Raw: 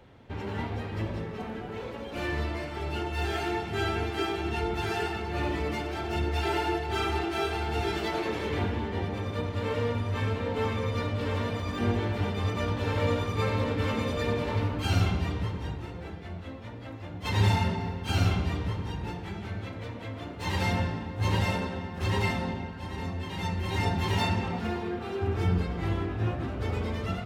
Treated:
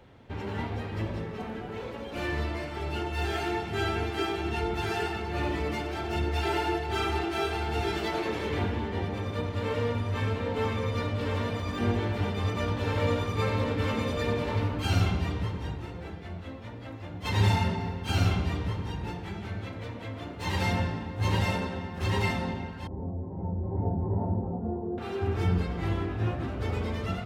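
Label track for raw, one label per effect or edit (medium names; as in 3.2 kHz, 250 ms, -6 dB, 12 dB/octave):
22.870000	24.980000	inverse Chebyshev low-pass stop band from 4.2 kHz, stop band 80 dB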